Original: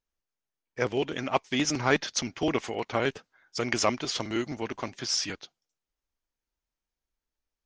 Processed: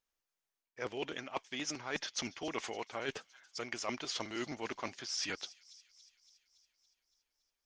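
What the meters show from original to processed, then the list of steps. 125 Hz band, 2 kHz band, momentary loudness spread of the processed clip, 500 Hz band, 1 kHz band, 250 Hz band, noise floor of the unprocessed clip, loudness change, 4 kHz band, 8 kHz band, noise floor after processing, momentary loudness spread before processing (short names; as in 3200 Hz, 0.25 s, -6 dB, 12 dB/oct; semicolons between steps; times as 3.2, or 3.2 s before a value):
-16.0 dB, -9.0 dB, 11 LU, -12.0 dB, -11.0 dB, -12.5 dB, under -85 dBFS, -10.5 dB, -8.0 dB, -9.0 dB, under -85 dBFS, 9 LU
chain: low shelf 320 Hz -10.5 dB; reverse; compressor 12:1, threshold -37 dBFS, peak gain reduction 17.5 dB; reverse; thin delay 0.282 s, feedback 62%, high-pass 4200 Hz, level -16 dB; gain +2 dB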